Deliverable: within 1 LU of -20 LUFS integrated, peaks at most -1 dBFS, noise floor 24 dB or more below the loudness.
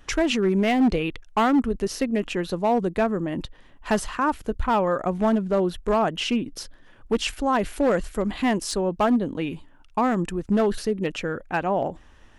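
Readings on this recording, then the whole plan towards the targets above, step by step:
clipped samples 1.9%; clipping level -15.0 dBFS; loudness -24.0 LUFS; peak level -15.0 dBFS; loudness target -20.0 LUFS
-> clip repair -15 dBFS; trim +4 dB

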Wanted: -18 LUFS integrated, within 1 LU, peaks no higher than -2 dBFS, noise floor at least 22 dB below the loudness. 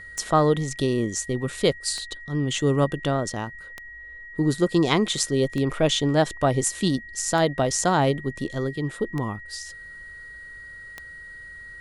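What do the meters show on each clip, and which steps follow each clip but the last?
clicks found 7; steady tone 1.9 kHz; tone level -39 dBFS; loudness -24.0 LUFS; peak level -4.5 dBFS; loudness target -18.0 LUFS
-> de-click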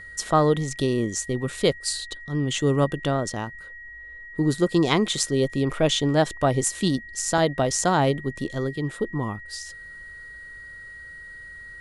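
clicks found 0; steady tone 1.9 kHz; tone level -39 dBFS
-> band-stop 1.9 kHz, Q 30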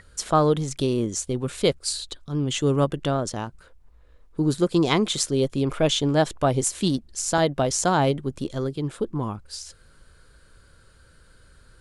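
steady tone not found; loudness -24.0 LUFS; peak level -4.5 dBFS; loudness target -18.0 LUFS
-> trim +6 dB; peak limiter -2 dBFS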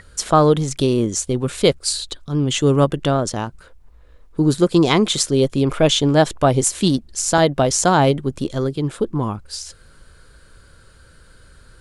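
loudness -18.0 LUFS; peak level -2.0 dBFS; noise floor -48 dBFS

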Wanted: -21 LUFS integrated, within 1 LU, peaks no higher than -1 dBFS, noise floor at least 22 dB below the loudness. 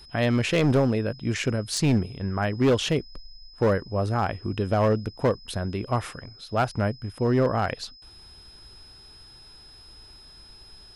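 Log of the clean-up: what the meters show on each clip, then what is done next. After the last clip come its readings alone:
clipped samples 1.3%; clipping level -15.5 dBFS; steady tone 5.1 kHz; tone level -48 dBFS; loudness -25.5 LUFS; peak level -15.5 dBFS; loudness target -21.0 LUFS
-> clip repair -15.5 dBFS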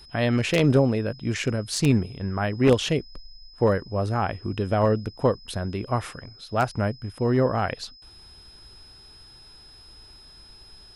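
clipped samples 0.0%; steady tone 5.1 kHz; tone level -48 dBFS
-> band-stop 5.1 kHz, Q 30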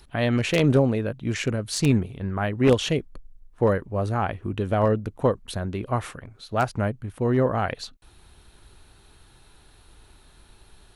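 steady tone not found; loudness -24.5 LUFS; peak level -6.5 dBFS; loudness target -21.0 LUFS
-> trim +3.5 dB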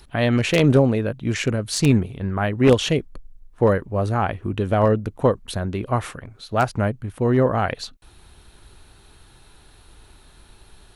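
loudness -21.0 LUFS; peak level -3.0 dBFS; noise floor -51 dBFS

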